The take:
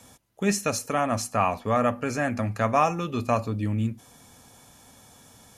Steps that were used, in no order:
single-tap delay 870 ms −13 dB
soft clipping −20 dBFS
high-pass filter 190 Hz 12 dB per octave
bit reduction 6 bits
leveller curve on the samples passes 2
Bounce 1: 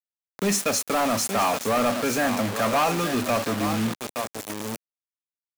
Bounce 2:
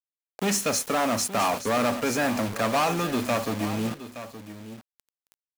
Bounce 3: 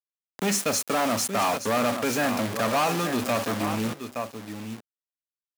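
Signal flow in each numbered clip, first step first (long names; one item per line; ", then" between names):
single-tap delay, then soft clipping, then bit reduction, then high-pass filter, then leveller curve on the samples
leveller curve on the samples, then soft clipping, then high-pass filter, then bit reduction, then single-tap delay
bit reduction, then single-tap delay, then leveller curve on the samples, then soft clipping, then high-pass filter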